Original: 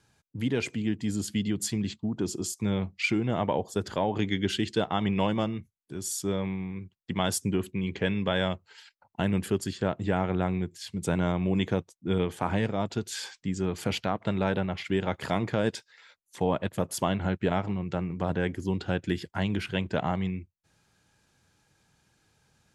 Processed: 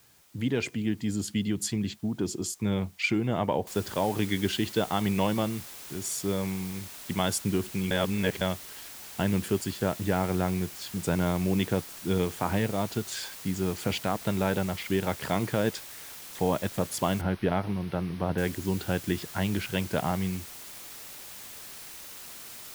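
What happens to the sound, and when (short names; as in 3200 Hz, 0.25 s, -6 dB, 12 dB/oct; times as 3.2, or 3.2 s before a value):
3.67 noise floor step -61 dB -44 dB
7.91–8.41 reverse
17.21–18.38 running mean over 6 samples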